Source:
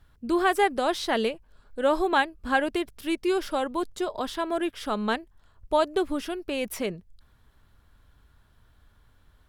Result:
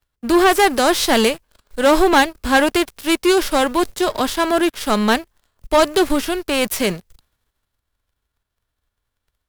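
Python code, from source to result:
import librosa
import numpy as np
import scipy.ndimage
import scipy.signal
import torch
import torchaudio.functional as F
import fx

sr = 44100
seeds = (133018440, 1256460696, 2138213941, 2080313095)

y = fx.envelope_flatten(x, sr, power=0.6)
y = fx.leveller(y, sr, passes=3)
y = fx.band_widen(y, sr, depth_pct=40)
y = y * librosa.db_to_amplitude(1.5)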